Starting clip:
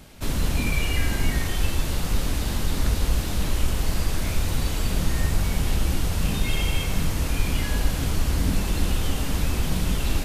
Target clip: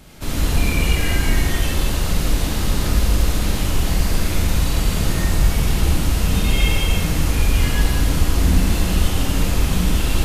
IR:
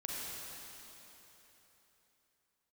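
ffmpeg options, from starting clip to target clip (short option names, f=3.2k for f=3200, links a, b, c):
-filter_complex "[1:a]atrim=start_sample=2205,afade=t=out:st=0.33:d=0.01,atrim=end_sample=14994,asetrate=52920,aresample=44100[a];[0:a][a]afir=irnorm=-1:irlink=0,volume=7dB"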